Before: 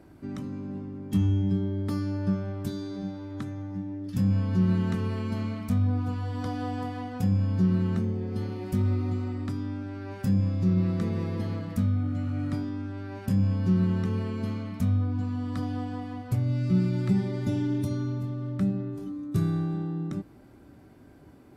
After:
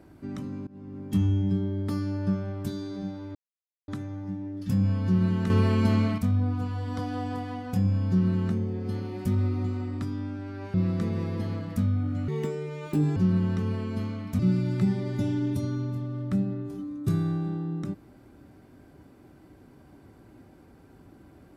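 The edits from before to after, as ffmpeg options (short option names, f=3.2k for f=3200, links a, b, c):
-filter_complex "[0:a]asplit=9[a][b][c][d][e][f][g][h][i];[a]atrim=end=0.67,asetpts=PTS-STARTPTS,afade=t=out:st=0.666:d=0.004:c=hsin:silence=0.0707946[j];[b]atrim=start=0.67:end=3.35,asetpts=PTS-STARTPTS,afade=t=in:d=0.32:silence=0.0707946,afade=t=out:st=2.676:d=0.004:c=hsin,apad=pad_dur=0.53[k];[c]atrim=start=3.35:end=4.972,asetpts=PTS-STARTPTS,afade=t=in:d=0.004:c=hsin[l];[d]atrim=start=4.968:end=5.652,asetpts=PTS-STARTPTS,volume=8dB[m];[e]atrim=start=5.648:end=10.212[n];[f]atrim=start=10.738:end=12.284[o];[g]atrim=start=12.28:end=13.63,asetpts=PTS-STARTPTS,asetrate=67473,aresample=44100[p];[h]atrim=start=13.626:end=14.862[q];[i]atrim=start=16.668[r];[j][k][l]concat=n=3:v=0:a=1[s];[s][m]acrossfade=d=0.004:c1=hsin:c2=hsin[t];[t][n]acrossfade=d=0.004:c1=hsin:c2=hsin[u];[u][o]acrossfade=d=0.004:c1=hsin:c2=hsin[v];[v][p]acrossfade=d=0.004:c1=hsin:c2=hsin[w];[w][q]acrossfade=d=0.004:c1=hsin:c2=hsin[x];[x][r]acrossfade=d=0.004:c1=hsin:c2=hsin"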